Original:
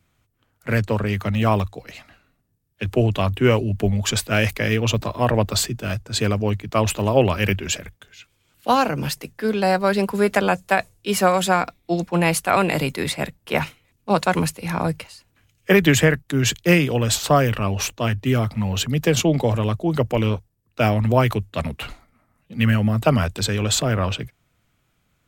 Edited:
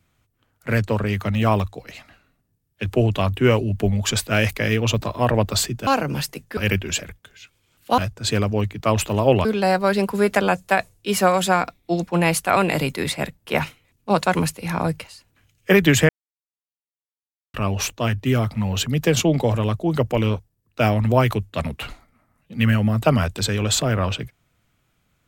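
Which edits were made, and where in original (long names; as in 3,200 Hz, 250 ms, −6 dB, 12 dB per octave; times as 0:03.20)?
0:05.87–0:07.34: swap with 0:08.75–0:09.45
0:16.09–0:17.54: silence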